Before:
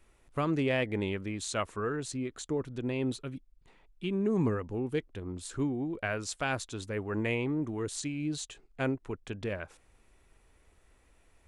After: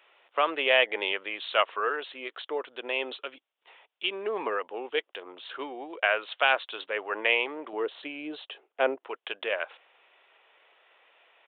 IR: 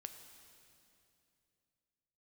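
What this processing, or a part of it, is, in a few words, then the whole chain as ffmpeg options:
musical greeting card: -filter_complex "[0:a]aresample=8000,aresample=44100,highpass=f=530:w=0.5412,highpass=f=530:w=1.3066,equalizer=f=3k:t=o:w=0.45:g=6.5,asettb=1/sr,asplit=3[a][b][c];[a]atrim=end=7.734[d];[b]atrim=start=7.73:end=9.07,asetpts=PTS-STARTPTS,afade=t=in:d=0.004:c=qsin,afade=t=out:st=1.336:d=0.004:c=qsin,tiltshelf=f=970:g=7.5[e];[c]atrim=start=9.066[f];[d][e]acrossfade=d=0.004:c1=hsin:c2=qsin[g];[g][f]acrossfade=d=0.004:c1=qsin:c2=hsin,volume=9dB"

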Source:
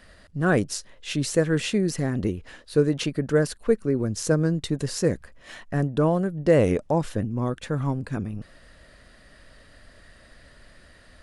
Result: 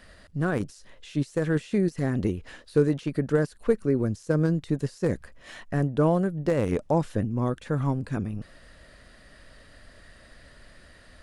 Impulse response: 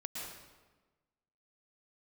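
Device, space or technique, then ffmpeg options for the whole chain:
de-esser from a sidechain: -filter_complex "[0:a]asplit=2[a][b];[b]highpass=4.7k,apad=whole_len=494865[c];[a][c]sidechaincompress=threshold=-49dB:ratio=16:attack=2.6:release=24"

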